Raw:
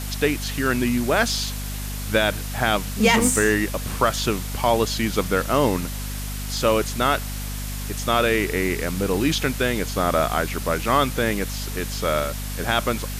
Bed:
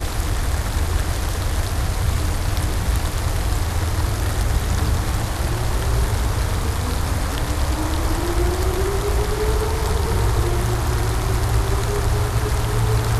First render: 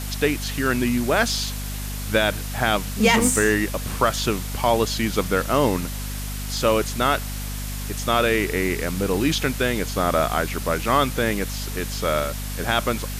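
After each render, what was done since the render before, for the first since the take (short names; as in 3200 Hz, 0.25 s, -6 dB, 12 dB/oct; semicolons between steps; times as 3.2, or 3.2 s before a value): nothing audible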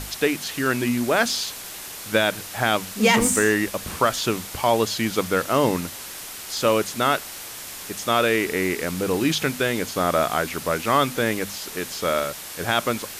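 notches 50/100/150/200/250 Hz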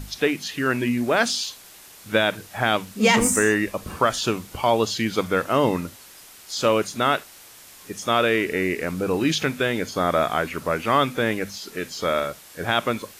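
noise print and reduce 10 dB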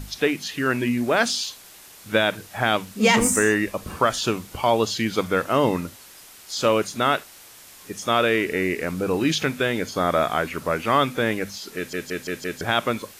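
11.76 stutter in place 0.17 s, 5 plays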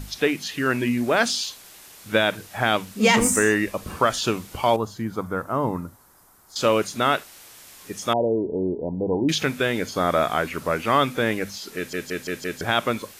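4.76–6.56 EQ curve 110 Hz 0 dB, 530 Hz -7 dB, 970 Hz -1 dB, 1400 Hz -5 dB, 2700 Hz -22 dB, 14000 Hz -7 dB; 8.13–9.29 brick-wall FIR low-pass 1000 Hz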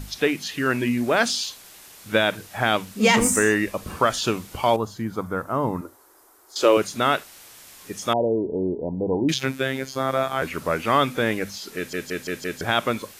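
5.81–6.77 resonant low shelf 250 Hz -11.5 dB, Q 3; 9.34–10.42 robotiser 133 Hz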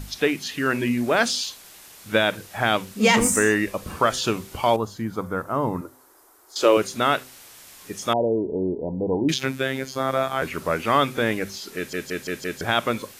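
de-hum 128.2 Hz, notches 4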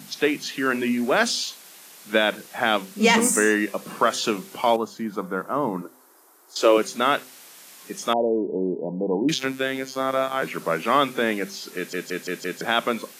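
steep high-pass 160 Hz 36 dB/oct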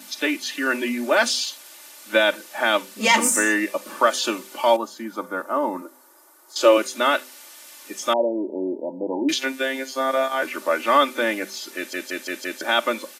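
HPF 340 Hz 12 dB/oct; comb 3.4 ms, depth 80%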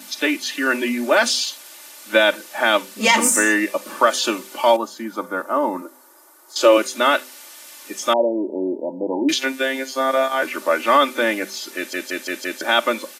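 gain +3 dB; limiter -3 dBFS, peak gain reduction 3 dB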